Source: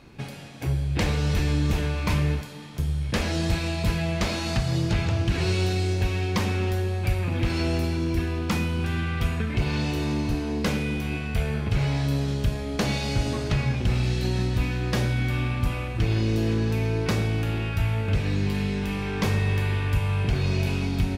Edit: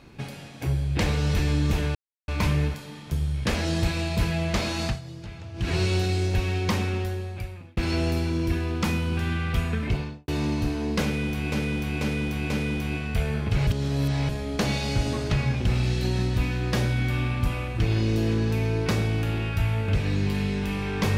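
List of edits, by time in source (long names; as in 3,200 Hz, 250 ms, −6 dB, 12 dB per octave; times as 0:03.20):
0:01.95: splice in silence 0.33 s
0:04.52–0:05.37: duck −15 dB, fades 0.16 s
0:06.41–0:07.44: fade out
0:09.50–0:09.95: fade out and dull
0:10.70–0:11.19: repeat, 4 plays
0:11.87–0:12.49: reverse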